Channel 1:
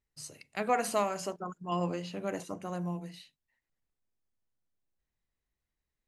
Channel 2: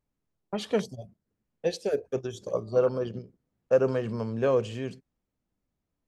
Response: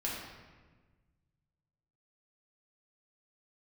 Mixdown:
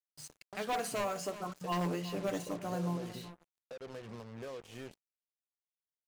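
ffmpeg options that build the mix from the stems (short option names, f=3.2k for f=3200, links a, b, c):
-filter_complex "[0:a]aecho=1:1:6.8:0.35,dynaudnorm=f=490:g=5:m=4.5dB,aeval=exprs='0.0794*(abs(mod(val(0)/0.0794+3,4)-2)-1)':c=same,volume=-5.5dB,asplit=2[a][b];[b]volume=-15dB[c];[1:a]acompressor=threshold=-34dB:ratio=6,lowshelf=f=460:g=-6,alimiter=level_in=9dB:limit=-24dB:level=0:latency=1:release=240,volume=-9dB,volume=-3dB[d];[c]aecho=0:1:371|742|1113:1|0.21|0.0441[e];[a][d][e]amix=inputs=3:normalize=0,adynamicequalizer=threshold=0.00251:dfrequency=330:dqfactor=4.4:tfrequency=330:tqfactor=4.4:attack=5:release=100:ratio=0.375:range=1.5:mode=boostabove:tftype=bell,acrusher=bits=7:mix=0:aa=0.5"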